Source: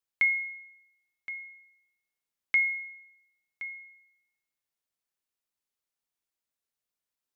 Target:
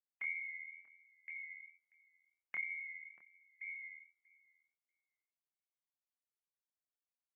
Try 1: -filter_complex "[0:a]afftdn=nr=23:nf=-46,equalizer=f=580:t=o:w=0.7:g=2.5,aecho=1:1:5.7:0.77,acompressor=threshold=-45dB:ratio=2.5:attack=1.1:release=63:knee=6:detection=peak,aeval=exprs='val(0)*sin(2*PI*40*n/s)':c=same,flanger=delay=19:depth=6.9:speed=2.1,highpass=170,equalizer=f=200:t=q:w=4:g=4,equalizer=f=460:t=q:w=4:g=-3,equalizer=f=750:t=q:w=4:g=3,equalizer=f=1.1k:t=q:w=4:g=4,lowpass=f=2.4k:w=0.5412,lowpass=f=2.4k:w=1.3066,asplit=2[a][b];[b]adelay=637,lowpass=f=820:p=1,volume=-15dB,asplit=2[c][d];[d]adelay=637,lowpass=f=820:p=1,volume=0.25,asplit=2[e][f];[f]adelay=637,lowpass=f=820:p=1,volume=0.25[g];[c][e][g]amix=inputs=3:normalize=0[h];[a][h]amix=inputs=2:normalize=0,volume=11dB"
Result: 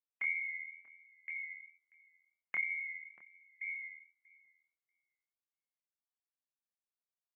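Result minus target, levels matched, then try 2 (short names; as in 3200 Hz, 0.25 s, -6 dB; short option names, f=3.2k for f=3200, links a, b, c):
compressor: peak gain reduction -5 dB
-filter_complex "[0:a]afftdn=nr=23:nf=-46,equalizer=f=580:t=o:w=0.7:g=2.5,aecho=1:1:5.7:0.77,acompressor=threshold=-53.5dB:ratio=2.5:attack=1.1:release=63:knee=6:detection=peak,aeval=exprs='val(0)*sin(2*PI*40*n/s)':c=same,flanger=delay=19:depth=6.9:speed=2.1,highpass=170,equalizer=f=200:t=q:w=4:g=4,equalizer=f=460:t=q:w=4:g=-3,equalizer=f=750:t=q:w=4:g=3,equalizer=f=1.1k:t=q:w=4:g=4,lowpass=f=2.4k:w=0.5412,lowpass=f=2.4k:w=1.3066,asplit=2[a][b];[b]adelay=637,lowpass=f=820:p=1,volume=-15dB,asplit=2[c][d];[d]adelay=637,lowpass=f=820:p=1,volume=0.25,asplit=2[e][f];[f]adelay=637,lowpass=f=820:p=1,volume=0.25[g];[c][e][g]amix=inputs=3:normalize=0[h];[a][h]amix=inputs=2:normalize=0,volume=11dB"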